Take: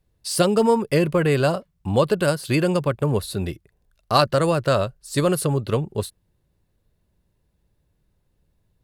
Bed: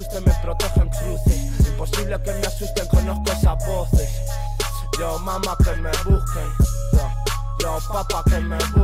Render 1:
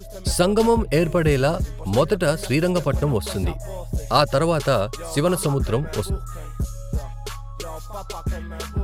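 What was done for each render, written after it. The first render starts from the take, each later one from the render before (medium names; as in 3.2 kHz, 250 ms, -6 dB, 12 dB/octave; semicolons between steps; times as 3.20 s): add bed -9.5 dB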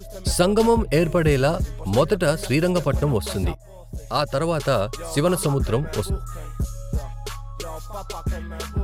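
3.55–4.91 s: fade in, from -16.5 dB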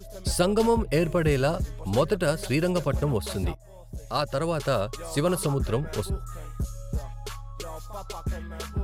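trim -4.5 dB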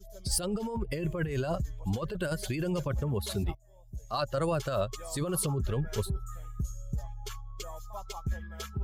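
expander on every frequency bin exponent 1.5; compressor with a negative ratio -30 dBFS, ratio -1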